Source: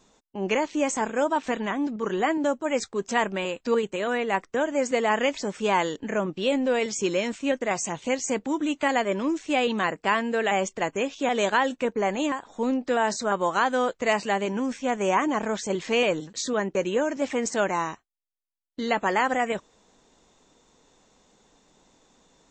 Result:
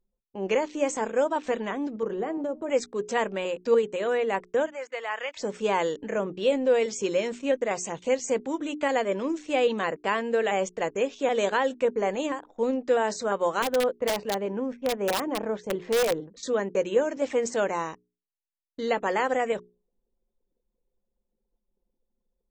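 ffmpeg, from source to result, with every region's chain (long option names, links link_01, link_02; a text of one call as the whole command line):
ffmpeg -i in.wav -filter_complex "[0:a]asettb=1/sr,asplit=3[link_01][link_02][link_03];[link_01]atrim=end=2.034[link_04];[link_02]atrim=start=2.03:end=2.7,asetpts=PTS-STARTPTS,afade=type=in:duration=0.004:curve=qsin,afade=type=out:start_time=0.666:duration=0.004:curve=qsin,tiltshelf=frequency=1100:gain=6.5,bandreject=frequency=153.7:width_type=h:width=4,bandreject=frequency=307.4:width_type=h:width=4,bandreject=frequency=461.1:width_type=h:width=4,bandreject=frequency=614.8:width_type=h:width=4,bandreject=frequency=768.5:width_type=h:width=4,bandreject=frequency=922.2:width_type=h:width=4,bandreject=frequency=1075.9:width_type=h:width=4,bandreject=frequency=1229.6:width_type=h:width=4,acompressor=threshold=-24dB:ratio=10:attack=3.2:release=140:knee=1:detection=peak[link_05];[link_03]atrim=start=2.696[link_06];[link_04][link_05]acrossfade=duration=0.004:curve1=hsin:curve2=qsin[link_07];[link_07][link_06]acrossfade=duration=0.004:curve1=qsin:curve2=hsin,asettb=1/sr,asplit=3[link_08][link_09][link_10];[link_08]atrim=end=4.664[link_11];[link_09]atrim=start=4.66:end=5.37,asetpts=PTS-STARTPTS,afade=type=in:duration=0.004:curve=qsin,afade=type=out:start_time=0.706:duration=0.004:curve=qsin,highpass=1100,acrossover=split=3400[link_12][link_13];[link_13]acompressor=threshold=-46dB:ratio=4:attack=1:release=60[link_14];[link_12][link_14]amix=inputs=2:normalize=0,highshelf=frequency=6900:gain=-8[link_15];[link_10]atrim=start=5.366[link_16];[link_11][link_15]acrossfade=duration=0.004:curve1=hsin:curve2=qsin[link_17];[link_17][link_16]acrossfade=duration=0.004:curve1=qsin:curve2=hsin,asettb=1/sr,asplit=3[link_18][link_19][link_20];[link_18]atrim=end=13.624[link_21];[link_19]atrim=start=13.62:end=16.43,asetpts=PTS-STARTPTS,afade=type=in:duration=0.004:curve=qsin,afade=type=out:start_time=2.806:duration=0.004:curve=qsin,lowpass=frequency=1200:poles=1,aeval=exprs='(mod(7.5*val(0)+1,2)-1)/7.5':channel_layout=same[link_22];[link_20]atrim=start=16.426[link_23];[link_21][link_22]acrossfade=duration=0.004:curve1=hsin:curve2=qsin[link_24];[link_24][link_23]acrossfade=duration=0.004:curve1=qsin:curve2=hsin,anlmdn=0.01,equalizer=frequency=490:width=2.8:gain=8,bandreject=frequency=60:width_type=h:width=6,bandreject=frequency=120:width_type=h:width=6,bandreject=frequency=180:width_type=h:width=6,bandreject=frequency=240:width_type=h:width=6,bandreject=frequency=300:width_type=h:width=6,bandreject=frequency=360:width_type=h:width=6,bandreject=frequency=420:width_type=h:width=6,volume=-4dB" out.wav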